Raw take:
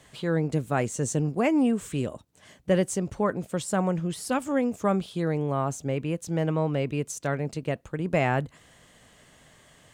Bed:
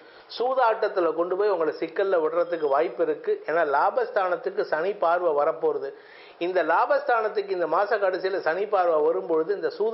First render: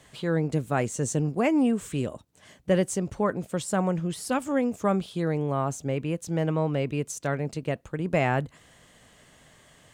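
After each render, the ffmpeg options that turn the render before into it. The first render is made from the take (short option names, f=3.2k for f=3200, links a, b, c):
-af anull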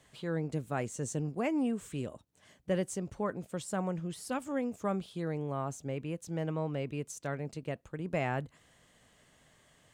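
-af "volume=-8.5dB"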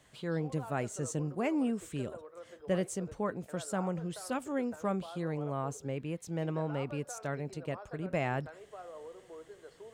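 -filter_complex "[1:a]volume=-25.5dB[a];[0:a][a]amix=inputs=2:normalize=0"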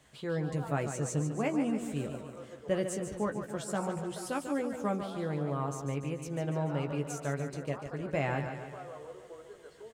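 -filter_complex "[0:a]asplit=2[a][b];[b]adelay=14,volume=-7dB[c];[a][c]amix=inputs=2:normalize=0,aecho=1:1:145|290|435|580|725|870|1015:0.376|0.21|0.118|0.066|0.037|0.0207|0.0116"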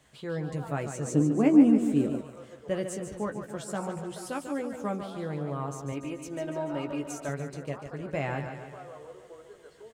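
-filter_complex "[0:a]asettb=1/sr,asplit=3[a][b][c];[a]atrim=end=1.074[d];[b]atrim=start=1.07:end=2.21,asetpts=PTS-STARTPTS,afade=t=in:d=0.004:c=qsin,afade=t=out:st=1.136:d=0.004:c=qsin,equalizer=f=290:w=1.2:g=14[e];[c]atrim=start=2.206[f];[d][e]acrossfade=d=0.004:c1=hsin:c2=qsin[g];[g][f]acrossfade=d=0.004:c1=qsin:c2=hsin,asettb=1/sr,asplit=3[h][i][j];[h]atrim=end=5.924[k];[i]atrim=start=5.92:end=7.29,asetpts=PTS-STARTPTS,afade=t=in:d=0.004:c=qsin,afade=t=out:st=1.366:d=0.004:c=qsin,aecho=1:1:3.2:0.66,atrim=end_sample=60417[l];[j]atrim=start=7.286[m];[k][l]acrossfade=d=0.004:c1=hsin:c2=qsin[n];[n][m]acrossfade=d=0.004:c1=qsin:c2=hsin"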